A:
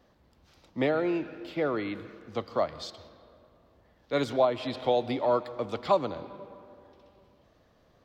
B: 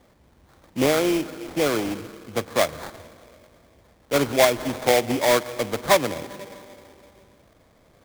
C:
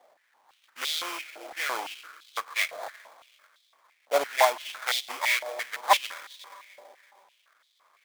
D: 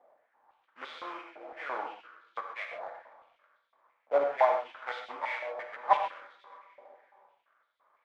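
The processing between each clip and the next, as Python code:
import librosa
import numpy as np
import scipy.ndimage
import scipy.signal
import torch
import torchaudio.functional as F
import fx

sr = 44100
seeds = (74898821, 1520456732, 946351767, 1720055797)

y1 = scipy.signal.sosfilt(scipy.signal.butter(2, 4800.0, 'lowpass', fs=sr, output='sos'), x)
y1 = fx.sample_hold(y1, sr, seeds[0], rate_hz=2800.0, jitter_pct=20)
y1 = y1 * 10.0 ** (6.5 / 20.0)
y2 = fx.filter_held_highpass(y1, sr, hz=5.9, low_hz=680.0, high_hz=3600.0)
y2 = y2 * 10.0 ** (-6.5 / 20.0)
y3 = scipy.signal.sosfilt(scipy.signal.butter(2, 1300.0, 'lowpass', fs=sr, output='sos'), y2)
y3 = fx.rev_gated(y3, sr, seeds[1], gate_ms=160, shape='flat', drr_db=3.5)
y3 = y3 * 10.0 ** (-3.0 / 20.0)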